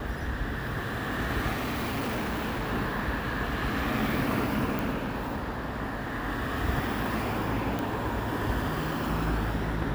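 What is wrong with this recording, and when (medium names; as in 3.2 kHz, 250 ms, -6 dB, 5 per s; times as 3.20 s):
1.52–2.67 s: clipped -27.5 dBFS
4.79 s: pop
7.79 s: pop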